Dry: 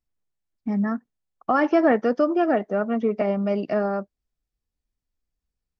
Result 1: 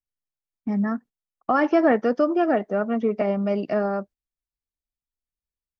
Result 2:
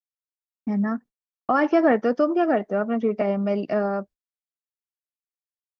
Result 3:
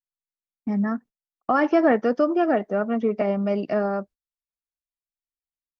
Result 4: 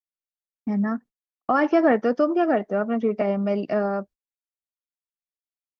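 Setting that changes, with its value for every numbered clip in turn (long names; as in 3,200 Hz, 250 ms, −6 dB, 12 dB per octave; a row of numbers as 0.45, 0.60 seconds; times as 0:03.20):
noise gate, range: −13, −56, −26, −40 decibels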